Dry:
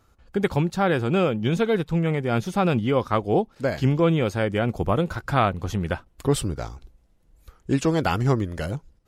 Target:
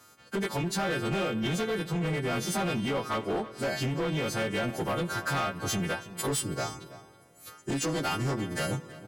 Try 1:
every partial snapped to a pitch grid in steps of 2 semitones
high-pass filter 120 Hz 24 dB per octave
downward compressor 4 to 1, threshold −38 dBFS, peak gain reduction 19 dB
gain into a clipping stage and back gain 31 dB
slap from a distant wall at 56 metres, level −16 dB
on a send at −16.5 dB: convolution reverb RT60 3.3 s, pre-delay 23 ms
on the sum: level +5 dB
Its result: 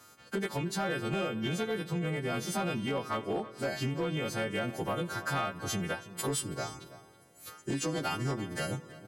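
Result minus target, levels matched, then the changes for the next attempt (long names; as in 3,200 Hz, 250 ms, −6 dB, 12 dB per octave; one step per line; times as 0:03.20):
downward compressor: peak gain reduction +5 dB
change: downward compressor 4 to 1, threshold −31.5 dBFS, peak gain reduction 14 dB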